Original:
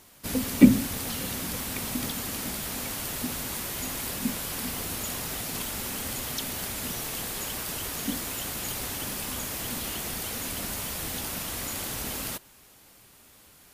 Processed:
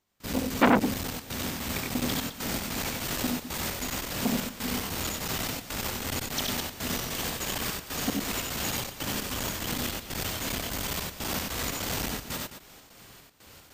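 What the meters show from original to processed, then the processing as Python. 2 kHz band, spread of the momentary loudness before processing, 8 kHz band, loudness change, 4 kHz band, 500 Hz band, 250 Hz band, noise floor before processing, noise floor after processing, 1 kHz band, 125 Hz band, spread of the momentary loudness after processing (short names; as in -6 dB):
+3.0 dB, 1 LU, -2.0 dB, -1.0 dB, +2.0 dB, +4.0 dB, -3.5 dB, -55 dBFS, -53 dBFS, +5.5 dB, 0.0 dB, 4 LU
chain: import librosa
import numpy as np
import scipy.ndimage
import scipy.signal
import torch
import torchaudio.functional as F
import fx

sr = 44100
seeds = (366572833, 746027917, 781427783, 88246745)

p1 = fx.peak_eq(x, sr, hz=11000.0, db=-14.5, octaves=0.43)
p2 = fx.rider(p1, sr, range_db=4, speed_s=2.0)
p3 = fx.step_gate(p2, sr, bpm=150, pattern='..xx.xx.xxx', floor_db=-24.0, edge_ms=4.5)
p4 = np.clip(10.0 ** (6.5 / 20.0) * p3, -1.0, 1.0) / 10.0 ** (6.5 / 20.0)
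p5 = p4 + fx.echo_multitap(p4, sr, ms=(69, 94, 210), db=(-5.0, -3.5, -12.0), dry=0)
p6 = fx.transformer_sat(p5, sr, knee_hz=1400.0)
y = p6 * 10.0 ** (1.0 / 20.0)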